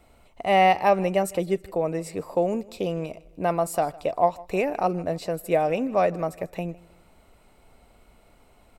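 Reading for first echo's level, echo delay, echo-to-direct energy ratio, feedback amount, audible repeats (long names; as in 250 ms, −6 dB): −22.5 dB, 157 ms, −21.5 dB, 41%, 2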